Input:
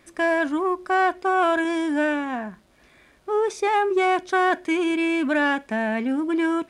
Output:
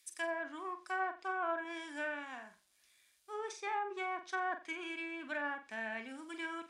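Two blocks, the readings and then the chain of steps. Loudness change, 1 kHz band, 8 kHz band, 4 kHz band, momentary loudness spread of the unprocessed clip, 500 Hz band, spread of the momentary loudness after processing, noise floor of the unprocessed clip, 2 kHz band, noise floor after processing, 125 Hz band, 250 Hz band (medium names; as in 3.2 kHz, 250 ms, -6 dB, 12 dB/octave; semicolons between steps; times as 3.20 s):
-17.0 dB, -16.0 dB, -10.0 dB, -15.0 dB, 5 LU, -19.5 dB, 7 LU, -57 dBFS, -14.0 dB, -72 dBFS, no reading, -24.0 dB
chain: pre-emphasis filter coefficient 0.97; low-pass that closes with the level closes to 1.3 kHz, closed at -33.5 dBFS; dynamic bell 3.9 kHz, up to -4 dB, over -57 dBFS, Q 1.1; flutter echo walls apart 7.7 m, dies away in 0.29 s; three bands expanded up and down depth 40%; trim +2 dB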